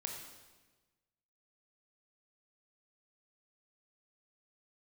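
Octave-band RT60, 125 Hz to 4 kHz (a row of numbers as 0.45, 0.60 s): 1.6, 1.4, 1.3, 1.2, 1.2, 1.1 s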